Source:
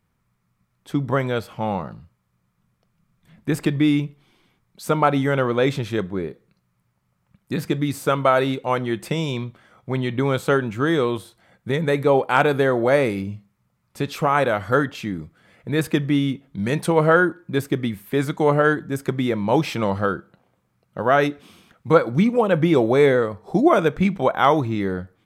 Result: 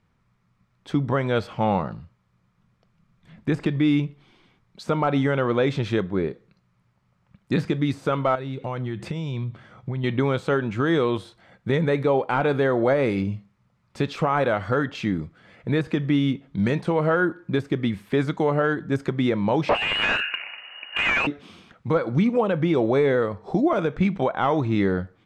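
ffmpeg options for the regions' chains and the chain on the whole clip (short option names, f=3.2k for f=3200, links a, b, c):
-filter_complex "[0:a]asettb=1/sr,asplit=3[a][b][c];[a]atrim=end=8.354[d];[b]atrim=start=8.35:end=10.04,asetpts=PTS-STARTPTS,afade=t=in:d=0.004:c=qsin,afade=t=out:st=1.686:d=0.004:c=qsin,equalizer=f=120:w=1:g=10,acompressor=threshold=-29dB:ratio=6:attack=3.2:release=140:knee=1:detection=peak[e];[c]atrim=start=10.036[f];[d][e]acrossfade=d=0.004:c1=hsin:c2=qsin[g];[g][f]acrossfade=d=0.004:c1=qsin:c2=hsin,asettb=1/sr,asplit=3[h][i][j];[h]atrim=end=19.694[k];[i]atrim=start=19.69:end=21.27,asetpts=PTS-STARTPTS,afade=t=in:d=0.004:c=qsin,afade=t=out:st=1.576:d=0.004:c=qsin,lowpass=f=2.6k:t=q:w=0.5098,lowpass=f=2.6k:t=q:w=0.6013,lowpass=f=2.6k:t=q:w=0.9,lowpass=f=2.6k:t=q:w=2.563,afreqshift=-3000,asplit=2[l][m];[m]highpass=f=720:p=1,volume=37dB,asoftclip=type=tanh:threshold=-3.5dB[n];[l][n]amix=inputs=2:normalize=0,lowpass=f=1.4k:p=1,volume=-6dB[o];[j]atrim=start=21.266[p];[k][o]acrossfade=d=0.004:c1=hsin:c2=qsin[q];[q][p]acrossfade=d=0.004:c1=qsin:c2=hsin,deesser=0.8,lowpass=5.4k,alimiter=limit=-15dB:level=0:latency=1:release=282,volume=3dB"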